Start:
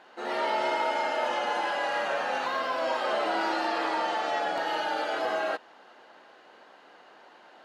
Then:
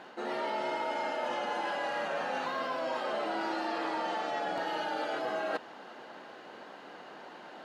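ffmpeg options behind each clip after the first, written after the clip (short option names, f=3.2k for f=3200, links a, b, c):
-af "equalizer=f=150:t=o:w=2.4:g=8.5,areverse,acompressor=threshold=-36dB:ratio=5,areverse,volume=4dB"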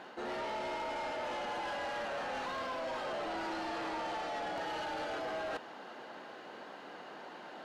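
-af "asoftclip=type=tanh:threshold=-34.5dB"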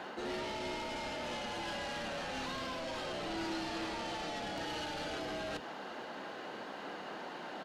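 -filter_complex "[0:a]acrossover=split=310|2500[a][b][c];[a]asplit=2[d][e];[e]adelay=30,volume=-2.5dB[f];[d][f]amix=inputs=2:normalize=0[g];[b]alimiter=level_in=18.5dB:limit=-24dB:level=0:latency=1:release=123,volume=-18.5dB[h];[g][h][c]amix=inputs=3:normalize=0,volume=5.5dB"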